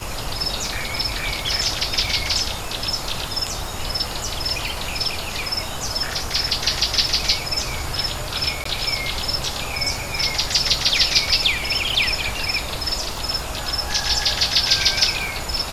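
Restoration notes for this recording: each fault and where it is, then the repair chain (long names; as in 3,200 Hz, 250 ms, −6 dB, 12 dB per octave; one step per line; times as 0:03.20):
surface crackle 30 per second −27 dBFS
0:08.64–0:08.65: drop-out 14 ms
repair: click removal
repair the gap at 0:08.64, 14 ms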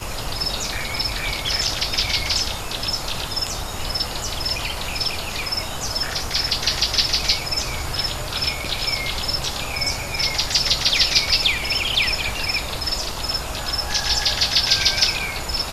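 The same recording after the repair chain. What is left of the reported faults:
none of them is left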